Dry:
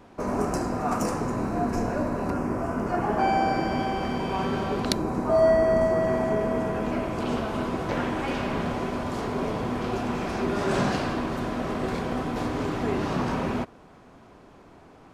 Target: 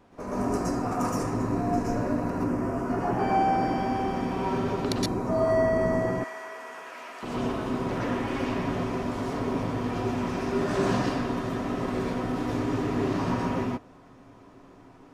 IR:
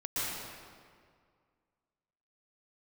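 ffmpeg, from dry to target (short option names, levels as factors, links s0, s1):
-filter_complex "[0:a]asettb=1/sr,asplit=3[s0][s1][s2];[s0]atrim=end=6.104[s3];[s1]atrim=start=6.1:end=7.23,asetpts=PTS-STARTPTS,afade=t=in:d=0.004:c=qsin,afade=t=out:st=1.126:d=0.004:c=qsin,highpass=1200[s4];[s2]atrim=start=7.226[s5];[s3][s4]acrossfade=d=0.004:c1=hsin:c2=qsin[s6];[s6][s5]acrossfade=d=0.004:c1=qsin:c2=hsin[s7];[1:a]atrim=start_sample=2205,atrim=end_sample=6174[s8];[s7][s8]afir=irnorm=-1:irlink=0,volume=0.75"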